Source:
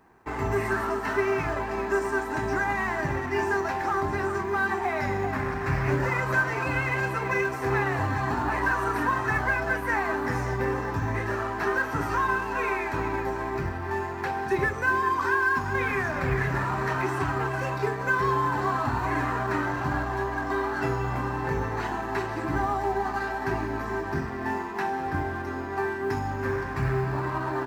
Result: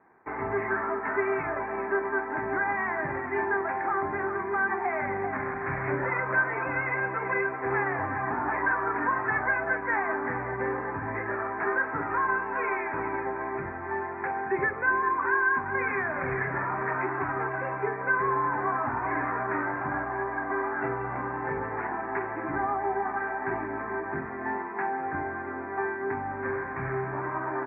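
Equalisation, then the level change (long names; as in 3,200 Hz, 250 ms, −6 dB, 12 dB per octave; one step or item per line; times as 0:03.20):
high-pass filter 310 Hz 6 dB per octave
Chebyshev low-pass filter 2,300 Hz, order 6
0.0 dB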